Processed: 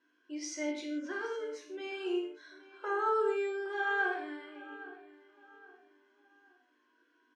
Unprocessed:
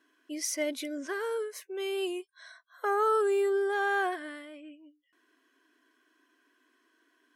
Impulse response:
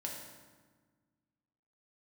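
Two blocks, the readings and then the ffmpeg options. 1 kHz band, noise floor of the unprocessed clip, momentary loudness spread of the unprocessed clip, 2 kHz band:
-4.0 dB, -72 dBFS, 17 LU, -1.0 dB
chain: -filter_complex "[0:a]lowpass=f=6.2k:w=0.5412,lowpass=f=6.2k:w=1.3066,asplit=2[a][b];[b]adelay=816,lowpass=f=4.3k:p=1,volume=-17dB,asplit=2[c][d];[d]adelay=816,lowpass=f=4.3k:p=1,volume=0.37,asplit=2[e][f];[f]adelay=816,lowpass=f=4.3k:p=1,volume=0.37[g];[a][c][e][g]amix=inputs=4:normalize=0[h];[1:a]atrim=start_sample=2205,afade=t=out:st=0.33:d=0.01,atrim=end_sample=14994,asetrate=70560,aresample=44100[i];[h][i]afir=irnorm=-1:irlink=0"

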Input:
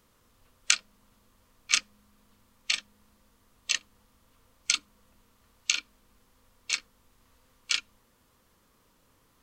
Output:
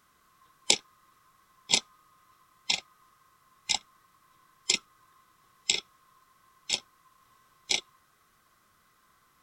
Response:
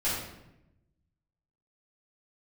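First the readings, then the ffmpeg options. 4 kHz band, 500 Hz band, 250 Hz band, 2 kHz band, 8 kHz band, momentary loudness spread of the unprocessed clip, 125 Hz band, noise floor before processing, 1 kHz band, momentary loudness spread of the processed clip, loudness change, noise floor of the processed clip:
+1.0 dB, +16.0 dB, +11.5 dB, -3.5 dB, -1.0 dB, 8 LU, n/a, -67 dBFS, +2.5 dB, 8 LU, 0.0 dB, -67 dBFS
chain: -af "afftfilt=real='real(if(lt(b,960),b+48*(1-2*mod(floor(b/48),2)),b),0)':imag='imag(if(lt(b,960),b+48*(1-2*mod(floor(b/48),2)),b),0)':win_size=2048:overlap=0.75"

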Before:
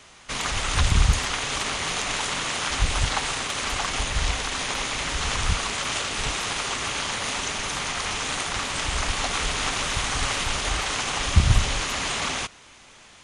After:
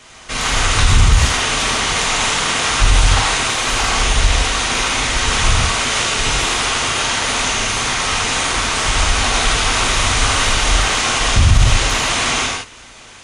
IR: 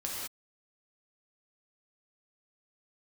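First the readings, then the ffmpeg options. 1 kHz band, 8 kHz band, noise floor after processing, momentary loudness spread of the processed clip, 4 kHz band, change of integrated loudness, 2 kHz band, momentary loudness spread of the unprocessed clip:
+10.0 dB, +10.0 dB, -40 dBFS, 3 LU, +10.0 dB, +10.0 dB, +10.0 dB, 5 LU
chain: -filter_complex "[1:a]atrim=start_sample=2205,asetrate=52920,aresample=44100[a];[0:a][a]afir=irnorm=-1:irlink=0,alimiter=level_in=9.5dB:limit=-1dB:release=50:level=0:latency=1,volume=-1dB"

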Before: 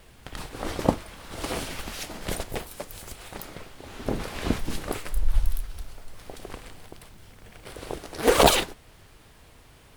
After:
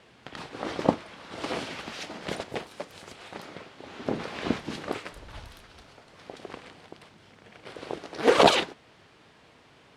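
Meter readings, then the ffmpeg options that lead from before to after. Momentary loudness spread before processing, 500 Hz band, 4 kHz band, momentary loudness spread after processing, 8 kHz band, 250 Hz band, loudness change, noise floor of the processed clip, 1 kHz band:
21 LU, 0.0 dB, -1.0 dB, 23 LU, -9.5 dB, -1.0 dB, -0.5 dB, -57 dBFS, 0.0 dB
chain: -af "highpass=160,lowpass=4.8k"

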